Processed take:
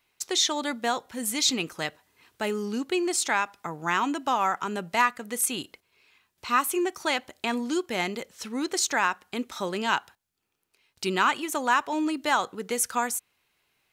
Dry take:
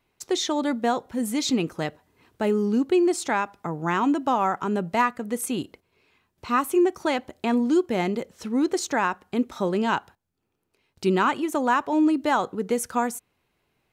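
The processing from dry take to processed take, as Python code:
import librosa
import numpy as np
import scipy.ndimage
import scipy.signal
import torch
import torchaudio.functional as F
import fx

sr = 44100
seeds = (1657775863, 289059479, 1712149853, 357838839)

y = fx.tilt_shelf(x, sr, db=-7.5, hz=970.0)
y = y * librosa.db_to_amplitude(-1.5)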